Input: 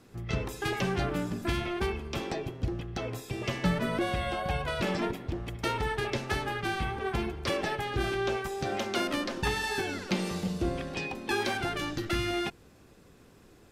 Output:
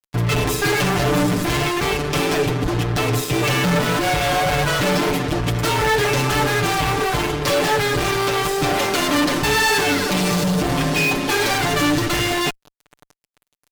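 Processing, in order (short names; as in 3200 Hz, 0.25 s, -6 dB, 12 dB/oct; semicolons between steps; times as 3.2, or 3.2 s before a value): fuzz box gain 46 dB, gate -47 dBFS; comb 6.8 ms, depth 79%; gain -6 dB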